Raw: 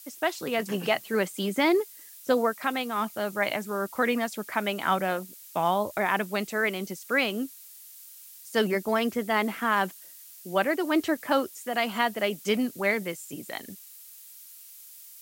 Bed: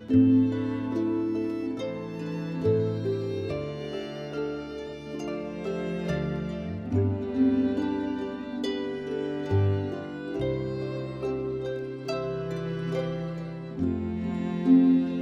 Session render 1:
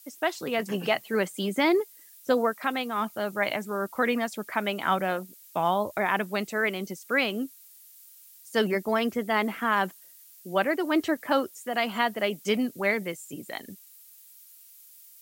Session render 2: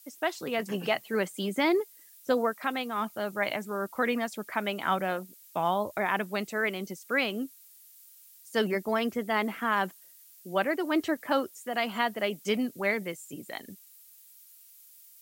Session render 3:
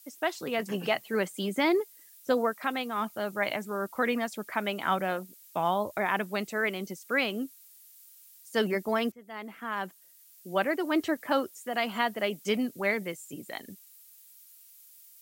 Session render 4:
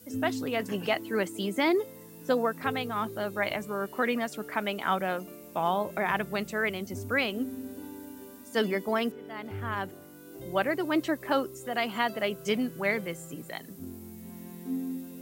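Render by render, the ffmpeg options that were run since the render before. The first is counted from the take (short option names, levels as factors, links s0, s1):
-af "afftdn=nr=6:nf=-48"
-af "volume=0.75"
-filter_complex "[0:a]asplit=2[s0][s1];[s0]atrim=end=9.12,asetpts=PTS-STARTPTS,afade=t=out:st=9.116:d=0.004:c=hsin:silence=0.0630957[s2];[s1]atrim=start=9.12,asetpts=PTS-STARTPTS,afade=t=in:d=1.44:silence=0.0630957[s3];[s2][s3]concat=n=2:v=0:a=1"
-filter_complex "[1:a]volume=0.188[s0];[0:a][s0]amix=inputs=2:normalize=0"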